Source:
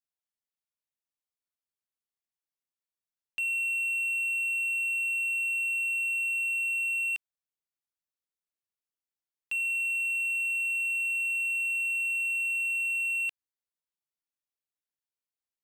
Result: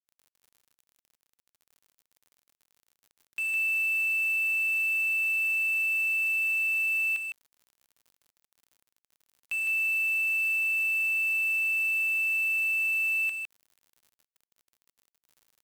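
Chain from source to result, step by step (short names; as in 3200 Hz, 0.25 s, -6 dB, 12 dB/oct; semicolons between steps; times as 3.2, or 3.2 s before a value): 10.39–12.04 notch 5200 Hz, Q 13; crackle 210/s -48 dBFS; frequency shift -73 Hz; bit-crush 8-bit; echo 0.158 s -5 dB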